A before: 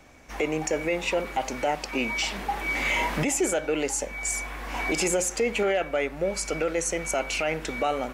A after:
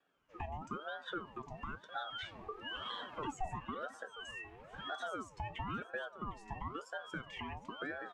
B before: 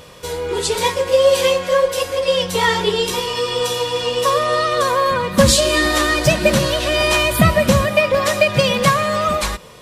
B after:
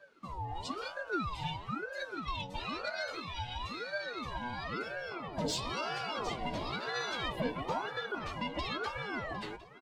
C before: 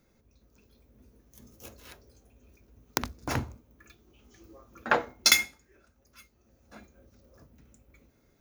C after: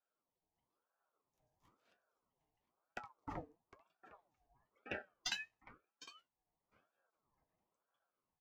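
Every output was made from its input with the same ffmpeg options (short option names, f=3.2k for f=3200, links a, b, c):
-filter_complex "[0:a]aemphasis=mode=reproduction:type=75fm,afftdn=nr=16:nf=-27,lowshelf=f=240:t=q:w=1.5:g=-9,acrossover=split=480|4300[a][b][c];[b]alimiter=limit=-12dB:level=0:latency=1:release=104[d];[a][d][c]amix=inputs=3:normalize=0,acrossover=split=240|3000[e][f][g];[f]acompressor=threshold=-36dB:ratio=2.5[h];[e][h][g]amix=inputs=3:normalize=0,aeval=exprs='0.282*(cos(1*acos(clip(val(0)/0.282,-1,1)))-cos(1*PI/2))+0.0178*(cos(3*acos(clip(val(0)/0.282,-1,1)))-cos(3*PI/2))':c=same,asoftclip=type=tanh:threshold=-20dB,flanger=delay=7.8:depth=4.2:regen=56:speed=0.68:shape=triangular,asuperstop=centerf=1000:order=8:qfactor=4,aecho=1:1:757:0.15,aeval=exprs='val(0)*sin(2*PI*730*n/s+730*0.5/1*sin(2*PI*1*n/s))':c=same"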